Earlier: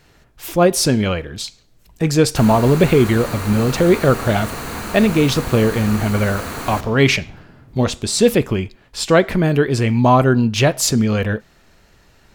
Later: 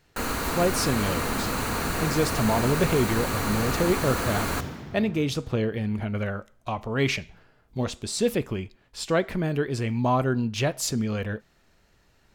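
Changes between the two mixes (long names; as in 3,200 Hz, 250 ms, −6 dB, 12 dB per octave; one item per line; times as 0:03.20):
speech −10.5 dB
background: entry −2.20 s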